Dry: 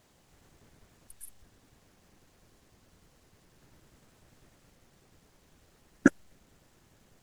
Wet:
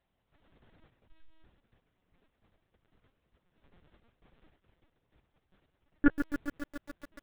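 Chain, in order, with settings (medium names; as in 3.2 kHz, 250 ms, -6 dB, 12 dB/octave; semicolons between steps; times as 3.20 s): gate -60 dBFS, range -13 dB; LPC vocoder at 8 kHz pitch kept; bit-crushed delay 139 ms, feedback 80%, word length 7-bit, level -9 dB; trim -1 dB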